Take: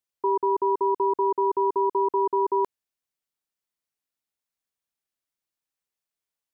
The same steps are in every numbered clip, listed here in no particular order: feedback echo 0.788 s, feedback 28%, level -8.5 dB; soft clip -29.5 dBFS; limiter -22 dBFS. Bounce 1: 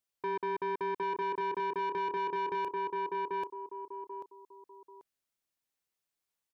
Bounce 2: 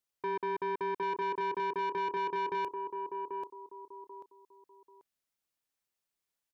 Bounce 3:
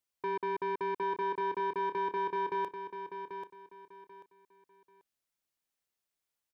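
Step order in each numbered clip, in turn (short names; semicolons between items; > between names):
feedback echo > limiter > soft clip; limiter > feedback echo > soft clip; limiter > soft clip > feedback echo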